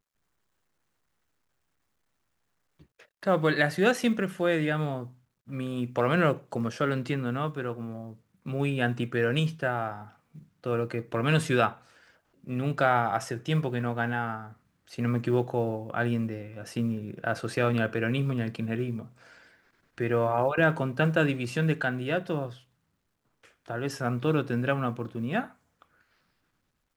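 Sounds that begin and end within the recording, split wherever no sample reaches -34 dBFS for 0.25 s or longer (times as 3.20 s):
3.23–5.04 s
5.51–8.11 s
8.46–10.02 s
10.66–11.71 s
12.47–14.46 s
14.93–19.02 s
19.98–22.49 s
23.70–25.45 s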